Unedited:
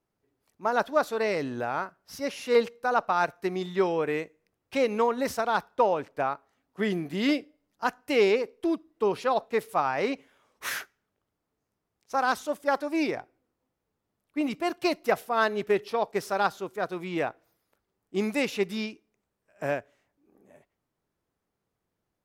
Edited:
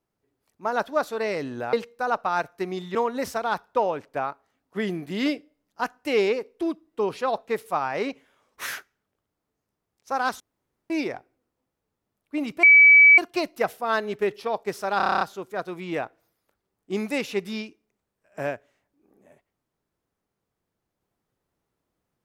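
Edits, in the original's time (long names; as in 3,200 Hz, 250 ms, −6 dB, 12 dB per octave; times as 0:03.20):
0:01.73–0:02.57: remove
0:03.79–0:04.98: remove
0:12.43–0:12.93: fill with room tone
0:14.66: insert tone 2,290 Hz −9 dBFS 0.55 s
0:16.45: stutter 0.03 s, 9 plays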